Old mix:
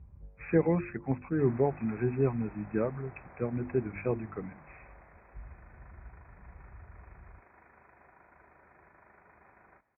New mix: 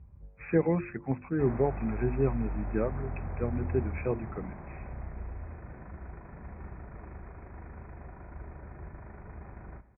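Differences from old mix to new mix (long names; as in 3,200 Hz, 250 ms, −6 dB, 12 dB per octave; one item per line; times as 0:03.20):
background: remove high-pass filter 1,400 Hz 6 dB per octave
reverb: on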